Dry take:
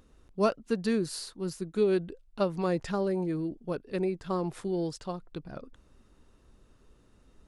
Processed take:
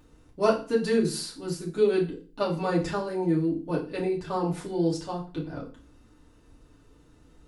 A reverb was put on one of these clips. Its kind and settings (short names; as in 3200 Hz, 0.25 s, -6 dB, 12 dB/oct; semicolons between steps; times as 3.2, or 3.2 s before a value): FDN reverb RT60 0.37 s, low-frequency decay 1.3×, high-frequency decay 0.95×, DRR -4.5 dB; gain -1.5 dB